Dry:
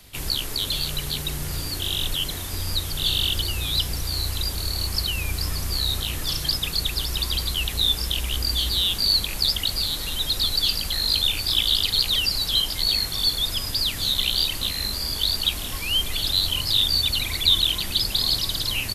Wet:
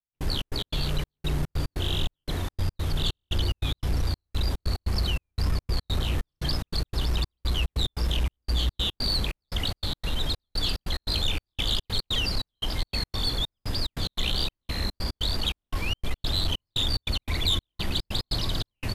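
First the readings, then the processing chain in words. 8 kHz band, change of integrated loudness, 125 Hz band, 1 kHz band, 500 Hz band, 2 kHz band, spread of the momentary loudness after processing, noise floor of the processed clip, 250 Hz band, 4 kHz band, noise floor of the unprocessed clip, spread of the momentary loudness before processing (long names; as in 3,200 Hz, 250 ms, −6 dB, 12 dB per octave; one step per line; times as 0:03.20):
−12.0 dB, −7.0 dB, +2.0 dB, −0.5 dB, +1.5 dB, −5.0 dB, 5 LU, below −85 dBFS, +2.0 dB, −9.0 dB, −31 dBFS, 7 LU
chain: low-pass filter 1,100 Hz 6 dB per octave
gate pattern "..xx.x.xxx" 145 BPM −60 dB
soft clipping −24 dBFS, distortion −16 dB
level +6 dB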